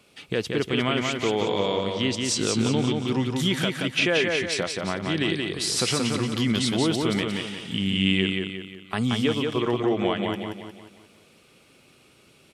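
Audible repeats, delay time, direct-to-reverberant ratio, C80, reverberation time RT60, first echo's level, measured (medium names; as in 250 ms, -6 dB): 5, 178 ms, no reverb, no reverb, no reverb, -3.5 dB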